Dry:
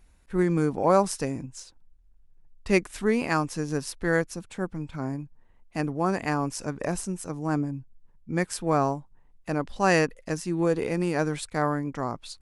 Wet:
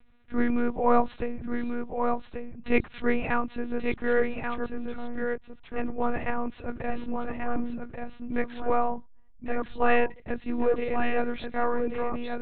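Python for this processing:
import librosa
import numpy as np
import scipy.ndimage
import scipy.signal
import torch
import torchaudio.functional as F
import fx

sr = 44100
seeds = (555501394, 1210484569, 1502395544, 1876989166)

y = fx.lpc_monotone(x, sr, seeds[0], pitch_hz=240.0, order=8)
y = y + 10.0 ** (-5.5 / 20.0) * np.pad(y, (int(1135 * sr / 1000.0), 0))[:len(y)]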